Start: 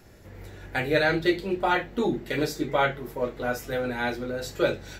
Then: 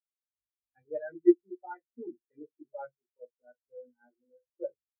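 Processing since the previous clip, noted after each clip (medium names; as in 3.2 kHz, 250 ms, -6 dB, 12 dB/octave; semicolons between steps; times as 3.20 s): spectral contrast expander 4:1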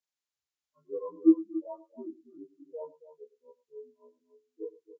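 frequency axis rescaled in octaves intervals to 76%; multi-tap echo 105/276 ms -19/-14 dB; trim +1 dB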